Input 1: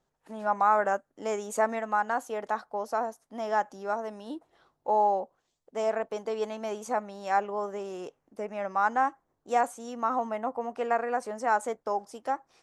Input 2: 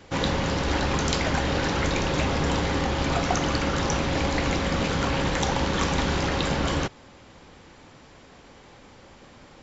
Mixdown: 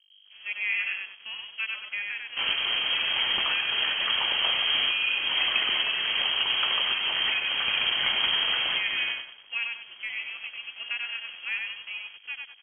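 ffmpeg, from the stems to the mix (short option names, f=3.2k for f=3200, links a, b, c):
-filter_complex "[0:a]highpass=240,aeval=exprs='val(0)+0.01*(sin(2*PI*50*n/s)+sin(2*PI*2*50*n/s)/2+sin(2*PI*3*50*n/s)/3+sin(2*PI*4*50*n/s)/4+sin(2*PI*5*50*n/s)/5)':c=same,volume=-6dB,asplit=3[a][b][c];[b]volume=-3dB[d];[1:a]adelay=2250,volume=-1dB,asplit=2[e][f];[f]volume=-10dB[g];[c]apad=whole_len=523694[h];[e][h]sidechaincompress=threshold=-33dB:ratio=8:attack=29:release=421[i];[d][g]amix=inputs=2:normalize=0,aecho=0:1:96|192|288|384|480|576:1|0.4|0.16|0.064|0.0256|0.0102[j];[a][i][j]amix=inputs=3:normalize=0,aeval=exprs='sgn(val(0))*max(abs(val(0))-0.00596,0)':c=same,lowpass=f=2.8k:t=q:w=0.5098,lowpass=f=2.8k:t=q:w=0.6013,lowpass=f=2.8k:t=q:w=0.9,lowpass=f=2.8k:t=q:w=2.563,afreqshift=-3300"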